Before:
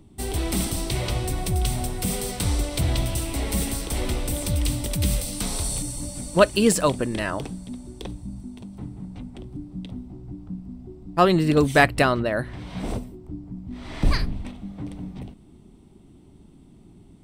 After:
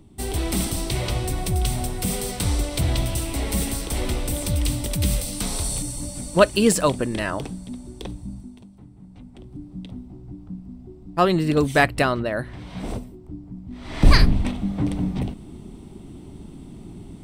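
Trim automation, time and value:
8.32 s +1 dB
8.84 s -11 dB
9.65 s -1 dB
13.79 s -1 dB
14.21 s +10.5 dB

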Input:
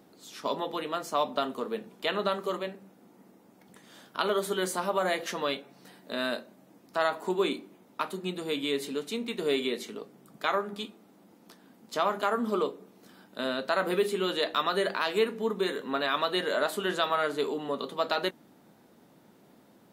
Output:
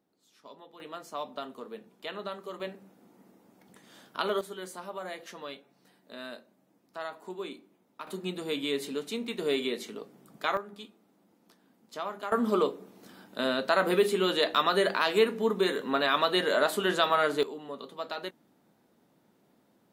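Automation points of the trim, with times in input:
-19 dB
from 0.80 s -9 dB
from 2.60 s -2 dB
from 4.41 s -11 dB
from 8.07 s -1 dB
from 10.57 s -8.5 dB
from 12.32 s +2.5 dB
from 17.43 s -8 dB

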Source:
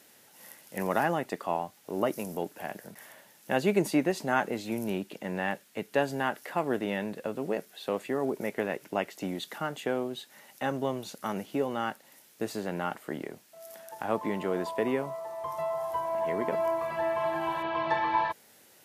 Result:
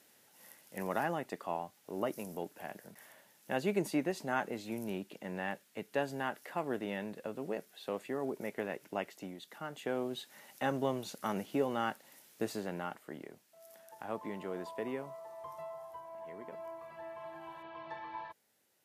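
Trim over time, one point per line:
9.11 s -7 dB
9.38 s -13.5 dB
10.13 s -2.5 dB
12.42 s -2.5 dB
13.05 s -10 dB
15.41 s -10 dB
16.03 s -17 dB

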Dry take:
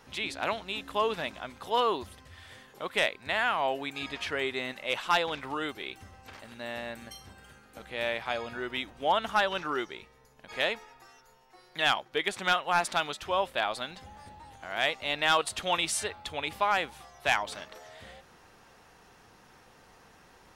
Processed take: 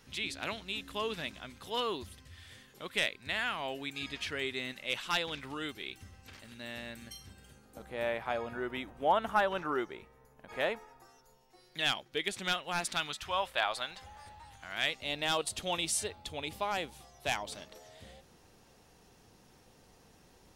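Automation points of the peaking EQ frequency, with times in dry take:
peaking EQ -11 dB 2.1 oct
7.27 s 810 Hz
8.08 s 4.4 kHz
10.68 s 4.4 kHz
11.78 s 970 Hz
12.80 s 970 Hz
13.61 s 220 Hz
14.27 s 220 Hz
15.14 s 1.4 kHz

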